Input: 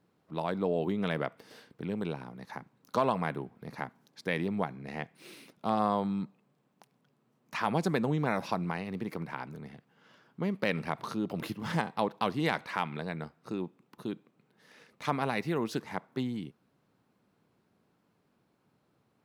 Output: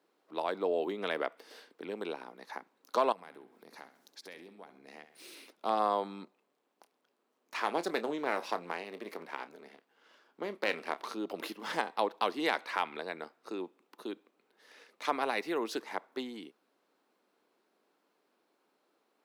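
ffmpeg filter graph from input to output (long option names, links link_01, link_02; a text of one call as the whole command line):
ffmpeg -i in.wav -filter_complex "[0:a]asettb=1/sr,asplit=3[link_01][link_02][link_03];[link_01]atrim=end=3.124[link_04];[link_02]atrim=start=3.12:end=5.35,asetpts=PTS-STARTPTS,afade=type=in:duration=0.004:curve=qsin,afade=type=out:start_time=2.226:duration=0.004:curve=qsin,bass=frequency=250:gain=7,treble=frequency=4000:gain=7,acompressor=threshold=-48dB:ratio=3:attack=3.2:release=140:knee=1:detection=peak,aecho=1:1:66|132|198|264:0.251|0.111|0.0486|0.0214,atrim=end_sample=98343[link_05];[link_03]atrim=start=5.346[link_06];[link_04][link_05]acrossfade=duration=0.004:curve1=hsin:curve2=qsin[link_07];[link_07][link_06]acrossfade=duration=0.004:curve1=qsin:curve2=hsin,asettb=1/sr,asplit=3[link_08][link_09][link_10];[link_08]atrim=end=6.244[link_11];[link_09]atrim=start=6.24:end=11.14,asetpts=PTS-STARTPTS,afade=type=in:duration=0.004:curve=qsin,afade=type=out:start_time=4.896:duration=0.004:curve=qsin,aeval=exprs='if(lt(val(0),0),0.447*val(0),val(0))':channel_layout=same,asplit=2[link_12][link_13];[link_13]adelay=29,volume=-13dB[link_14];[link_12][link_14]amix=inputs=2:normalize=0,atrim=end_sample=216090[link_15];[link_10]atrim=start=11.136[link_16];[link_11][link_15]acrossfade=duration=0.004:curve1=hsin:curve2=qsin[link_17];[link_17][link_16]acrossfade=duration=0.004:curve1=qsin:curve2=hsin,highpass=frequency=310:width=0.5412,highpass=frequency=310:width=1.3066,equalizer=frequency=4100:width=1.5:gain=2" out.wav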